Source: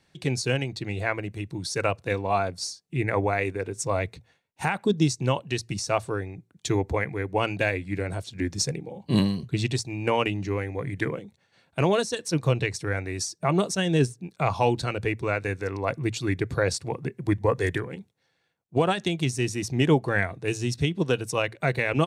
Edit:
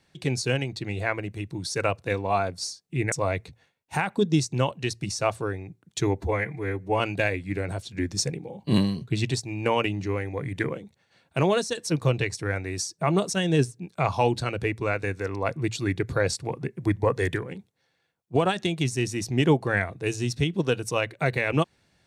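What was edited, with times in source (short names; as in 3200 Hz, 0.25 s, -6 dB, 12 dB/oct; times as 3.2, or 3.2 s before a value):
3.12–3.8 cut
6.88–7.41 stretch 1.5×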